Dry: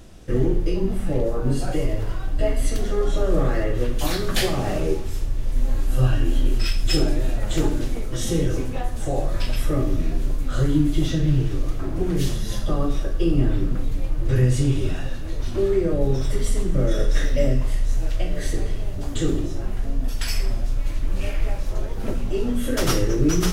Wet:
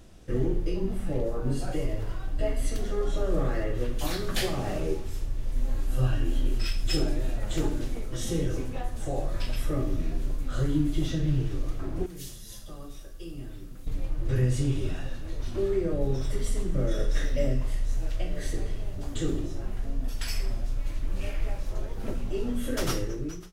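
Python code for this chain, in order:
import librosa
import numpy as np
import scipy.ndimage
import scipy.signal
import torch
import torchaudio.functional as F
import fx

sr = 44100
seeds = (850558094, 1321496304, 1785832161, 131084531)

y = fx.fade_out_tail(x, sr, length_s=0.73)
y = fx.pre_emphasis(y, sr, coefficient=0.8, at=(12.06, 13.87))
y = F.gain(torch.from_numpy(y), -6.5).numpy()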